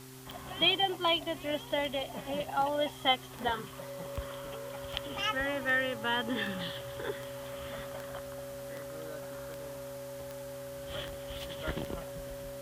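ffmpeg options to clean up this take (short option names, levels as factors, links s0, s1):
-af "adeclick=t=4,bandreject=f=130.1:t=h:w=4,bandreject=f=260.2:t=h:w=4,bandreject=f=390.3:t=h:w=4,bandreject=f=560:w=30,afwtdn=0.0022"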